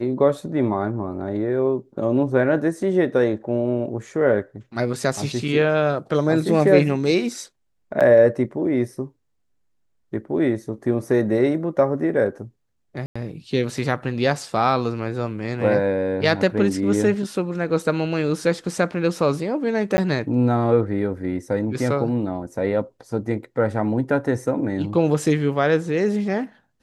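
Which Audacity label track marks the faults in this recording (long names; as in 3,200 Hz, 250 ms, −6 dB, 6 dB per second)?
8.000000	8.010000	drop-out 7 ms
13.060000	13.150000	drop-out 95 ms
19.970000	19.980000	drop-out 10 ms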